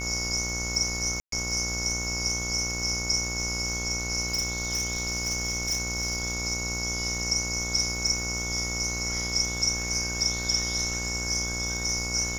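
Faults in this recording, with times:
buzz 60 Hz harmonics 25 -35 dBFS
crackle 87/s -35 dBFS
tone 2200 Hz -34 dBFS
1.2–1.32 gap 0.123 s
4.28–6.29 clipped -23 dBFS

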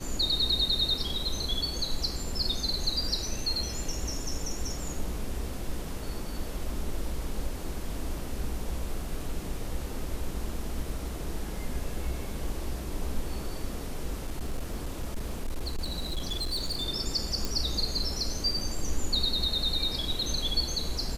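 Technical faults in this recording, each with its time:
14.27–16.84 clipped -27 dBFS
17.45 pop

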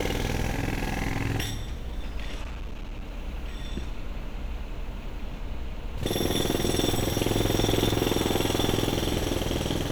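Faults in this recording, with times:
2.43–3.11 clipped -31 dBFS

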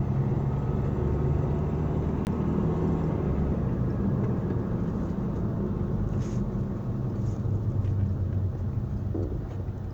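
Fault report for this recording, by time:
2.25–2.27 gap 19 ms

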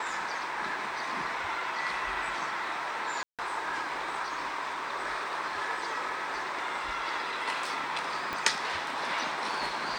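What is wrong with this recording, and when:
3.23–3.39 gap 0.157 s
8.33 pop -19 dBFS

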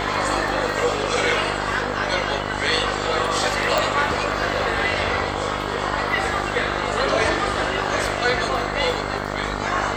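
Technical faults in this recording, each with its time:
buzz 50 Hz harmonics 29 -28 dBFS
3.78 pop

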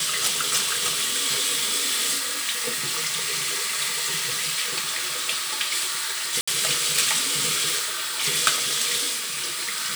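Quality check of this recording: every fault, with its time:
6.41–6.47 gap 65 ms

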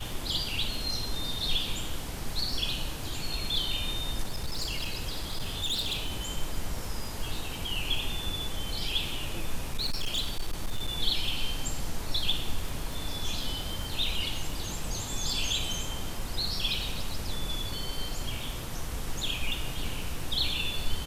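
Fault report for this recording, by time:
crackle 15/s -33 dBFS
4.23–6.27 clipped -26.5 dBFS
9.73–10.97 clipped -24.5 dBFS

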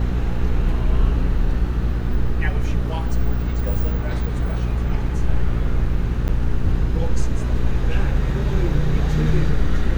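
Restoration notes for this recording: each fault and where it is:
hum 60 Hz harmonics 7 -23 dBFS
6.28–6.29 gap 7.9 ms

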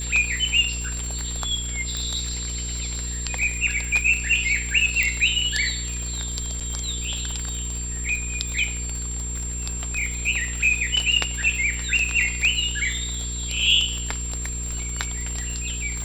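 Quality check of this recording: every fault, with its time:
crackle 58/s -28 dBFS
hum 60 Hz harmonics 8 -31 dBFS
tone 7400 Hz -30 dBFS
1.97 pop
5.03 pop -8 dBFS
6.6–6.61 gap 7 ms

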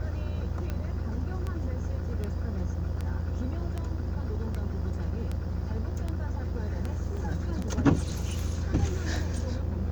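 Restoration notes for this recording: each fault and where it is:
buzz 60 Hz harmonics 33 -35 dBFS
tick 78 rpm -21 dBFS
7.17 gap 3.2 ms

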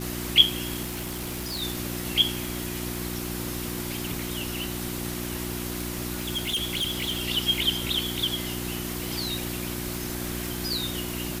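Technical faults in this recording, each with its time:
crackle 160/s -35 dBFS
hum 60 Hz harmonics 6 -34 dBFS
0.82–1.63 clipped -28 dBFS
6.18–7.23 clipped -23.5 dBFS

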